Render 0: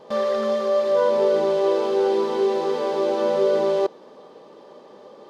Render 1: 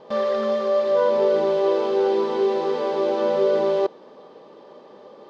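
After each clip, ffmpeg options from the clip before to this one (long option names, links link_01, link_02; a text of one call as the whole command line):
ffmpeg -i in.wav -af "lowpass=5100" out.wav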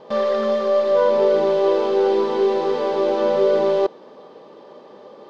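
ffmpeg -i in.wav -af "aeval=exprs='0.355*(cos(1*acos(clip(val(0)/0.355,-1,1)))-cos(1*PI/2))+0.00316*(cos(8*acos(clip(val(0)/0.355,-1,1)))-cos(8*PI/2))':channel_layout=same,volume=2.5dB" out.wav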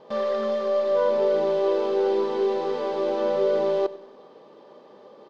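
ffmpeg -i in.wav -af "aecho=1:1:97|194|291|388:0.112|0.0539|0.0259|0.0124,volume=-6dB" out.wav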